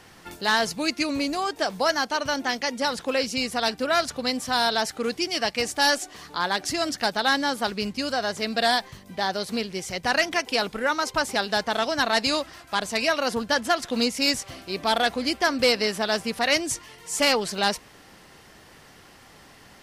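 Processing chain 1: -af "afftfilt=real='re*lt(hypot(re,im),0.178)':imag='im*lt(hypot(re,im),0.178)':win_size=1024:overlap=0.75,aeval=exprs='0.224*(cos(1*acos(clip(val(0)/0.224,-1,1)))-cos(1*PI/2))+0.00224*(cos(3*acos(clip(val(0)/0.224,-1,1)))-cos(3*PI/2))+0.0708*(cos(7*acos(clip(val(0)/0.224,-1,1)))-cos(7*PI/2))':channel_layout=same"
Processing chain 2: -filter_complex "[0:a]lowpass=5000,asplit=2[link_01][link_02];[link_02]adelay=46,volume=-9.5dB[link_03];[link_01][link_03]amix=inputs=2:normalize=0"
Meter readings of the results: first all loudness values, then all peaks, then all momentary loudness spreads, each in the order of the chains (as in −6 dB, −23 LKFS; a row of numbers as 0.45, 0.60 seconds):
−31.5, −24.5 LKFS; −12.0, −8.5 dBFS; 8, 7 LU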